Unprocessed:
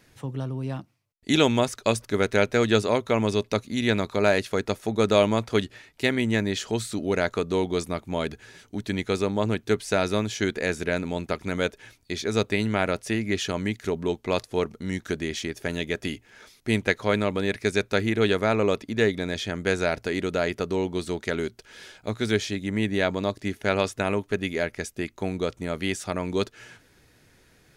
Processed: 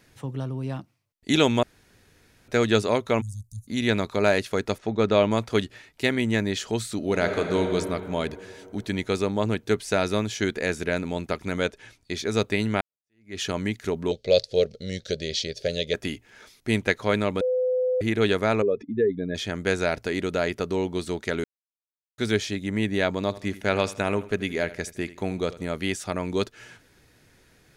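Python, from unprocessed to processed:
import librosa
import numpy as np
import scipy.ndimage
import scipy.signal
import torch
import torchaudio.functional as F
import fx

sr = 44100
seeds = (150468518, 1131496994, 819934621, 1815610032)

y = fx.cheby2_bandstop(x, sr, low_hz=430.0, high_hz=2300.0, order=4, stop_db=70, at=(3.2, 3.67), fade=0.02)
y = fx.air_absorb(y, sr, metres=130.0, at=(4.78, 5.31))
y = fx.reverb_throw(y, sr, start_s=6.97, length_s=0.67, rt60_s=3.0, drr_db=4.0)
y = fx.lowpass(y, sr, hz=10000.0, slope=12, at=(11.59, 12.12))
y = fx.curve_eq(y, sr, hz=(150.0, 310.0, 540.0, 1000.0, 1400.0, 2600.0, 4400.0, 6500.0, 12000.0), db=(0, -10, 12, -23, -10, -1, 12, 1, -14), at=(14.11, 15.94))
y = fx.spec_expand(y, sr, power=2.2, at=(18.62, 19.35))
y = fx.echo_feedback(y, sr, ms=81, feedback_pct=38, wet_db=-17.0, at=(23.23, 25.63))
y = fx.edit(y, sr, fx.room_tone_fill(start_s=1.63, length_s=0.85),
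    fx.fade_in_span(start_s=12.81, length_s=0.59, curve='exp'),
    fx.bleep(start_s=17.41, length_s=0.6, hz=507.0, db=-20.5),
    fx.silence(start_s=21.44, length_s=0.74), tone=tone)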